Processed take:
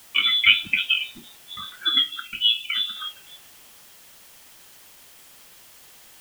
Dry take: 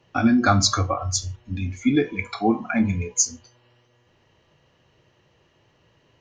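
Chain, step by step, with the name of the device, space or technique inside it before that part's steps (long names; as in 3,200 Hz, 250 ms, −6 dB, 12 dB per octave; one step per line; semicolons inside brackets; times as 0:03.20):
scrambled radio voice (band-pass filter 390–2,900 Hz; voice inversion scrambler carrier 3,700 Hz; white noise bed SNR 23 dB)
0:01.98–0:02.96: flat-topped bell 890 Hz −9.5 dB 2.6 octaves
level +4 dB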